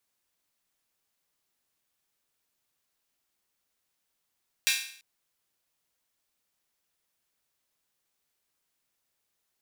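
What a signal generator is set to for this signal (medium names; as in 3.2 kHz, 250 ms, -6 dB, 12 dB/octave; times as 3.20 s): open hi-hat length 0.34 s, high-pass 2.3 kHz, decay 0.56 s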